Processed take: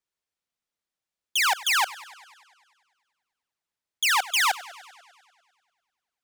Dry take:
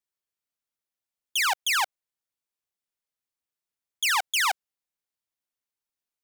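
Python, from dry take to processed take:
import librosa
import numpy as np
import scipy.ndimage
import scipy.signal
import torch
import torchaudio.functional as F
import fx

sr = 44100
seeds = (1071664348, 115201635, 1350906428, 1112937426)

y = scipy.signal.medfilt(x, 3)
y = fx.echo_warbled(y, sr, ms=99, feedback_pct=68, rate_hz=2.8, cents=143, wet_db=-19)
y = y * 10.0 ** (2.0 / 20.0)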